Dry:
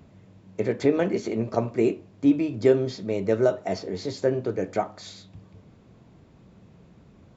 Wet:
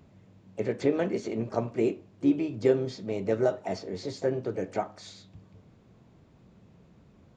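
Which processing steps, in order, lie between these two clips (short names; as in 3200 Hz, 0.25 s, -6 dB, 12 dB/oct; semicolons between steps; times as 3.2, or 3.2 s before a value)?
harmoniser +4 st -14 dB; gain -4.5 dB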